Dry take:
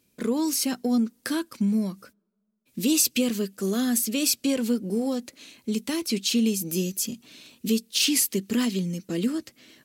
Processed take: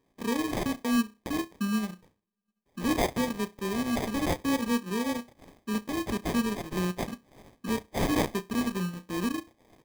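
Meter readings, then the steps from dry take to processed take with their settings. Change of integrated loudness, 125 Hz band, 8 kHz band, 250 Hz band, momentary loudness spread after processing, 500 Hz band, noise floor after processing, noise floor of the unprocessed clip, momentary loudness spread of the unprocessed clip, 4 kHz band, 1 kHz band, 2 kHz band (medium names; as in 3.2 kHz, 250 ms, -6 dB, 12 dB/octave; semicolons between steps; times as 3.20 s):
-5.0 dB, -1.5 dB, -14.0 dB, -4.5 dB, 9 LU, -2.5 dB, -77 dBFS, -70 dBFS, 10 LU, -9.5 dB, +7.0 dB, +0.5 dB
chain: flutter echo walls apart 5.7 m, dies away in 0.27 s; sample-rate reducer 1.4 kHz, jitter 0%; transient shaper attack -2 dB, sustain -8 dB; trim -4 dB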